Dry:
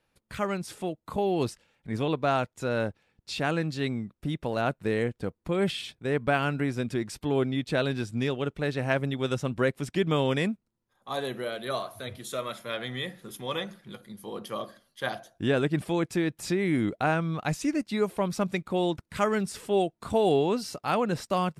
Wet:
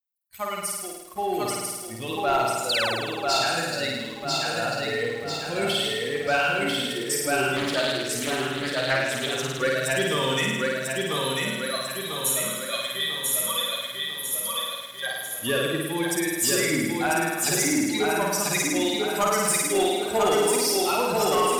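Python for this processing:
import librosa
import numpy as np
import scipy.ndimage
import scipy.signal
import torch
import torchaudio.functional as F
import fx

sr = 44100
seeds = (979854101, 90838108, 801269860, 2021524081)

y = fx.bin_expand(x, sr, power=2.0)
y = fx.high_shelf(y, sr, hz=9900.0, db=5.0)
y = fx.echo_feedback(y, sr, ms=994, feedback_pct=49, wet_db=-3)
y = fx.spec_paint(y, sr, seeds[0], shape='fall', start_s=2.69, length_s=0.27, low_hz=290.0, high_hz=5100.0, level_db=-36.0)
y = fx.riaa(y, sr, side='recording')
y = fx.room_flutter(y, sr, wall_m=9.1, rt60_s=1.3)
y = fx.leveller(y, sr, passes=2)
y = fx.doppler_dist(y, sr, depth_ms=0.33, at=(7.56, 9.62))
y = y * librosa.db_to_amplitude(-1.5)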